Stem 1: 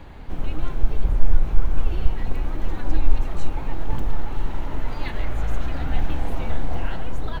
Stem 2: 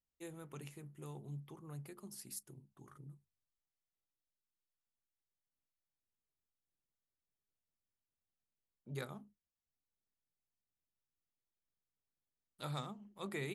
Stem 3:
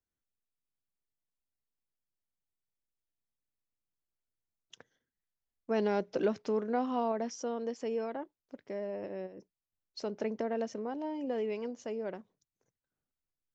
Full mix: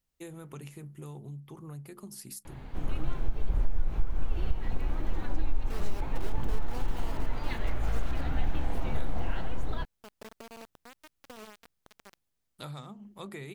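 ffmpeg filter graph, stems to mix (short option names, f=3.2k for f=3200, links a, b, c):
-filter_complex "[0:a]adelay=2450,volume=-5dB[a];[1:a]acontrast=66,lowshelf=f=160:g=5.5,acompressor=threshold=-43dB:ratio=4,volume=2dB[b];[2:a]acrusher=bits=4:mix=0:aa=0.000001,volume=-14.5dB[c];[a][b][c]amix=inputs=3:normalize=0,acompressor=threshold=-18dB:ratio=5"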